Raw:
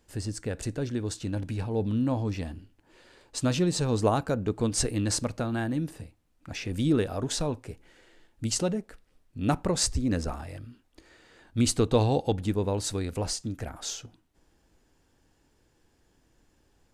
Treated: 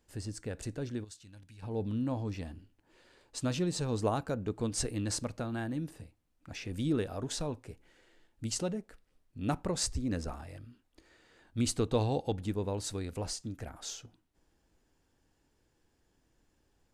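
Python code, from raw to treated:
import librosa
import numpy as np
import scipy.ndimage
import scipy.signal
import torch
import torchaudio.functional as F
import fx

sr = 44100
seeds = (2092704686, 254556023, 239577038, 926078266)

y = fx.tone_stack(x, sr, knobs='5-5-5', at=(1.03, 1.62), fade=0.02)
y = F.gain(torch.from_numpy(y), -6.5).numpy()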